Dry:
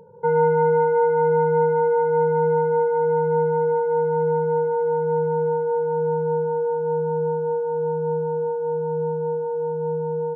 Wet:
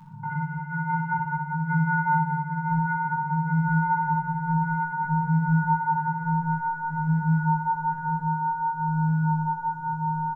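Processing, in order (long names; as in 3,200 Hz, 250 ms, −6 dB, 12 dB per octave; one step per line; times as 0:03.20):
Chebyshev band-stop filter 270–1,000 Hz, order 3
parametric band 840 Hz +6 dB 0.29 octaves
comb filter 6.7 ms, depth 75%
compressor whose output falls as the input rises −27 dBFS, ratio −0.5
hollow resonant body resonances 230/620/1,400 Hz, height 7 dB
chorus effect 0.55 Hz, delay 19 ms, depth 3.9 ms
repeating echo 61 ms, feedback 56%, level −5.5 dB
on a send at −1 dB: convolution reverb, pre-delay 17 ms
on the sum: level +3 dB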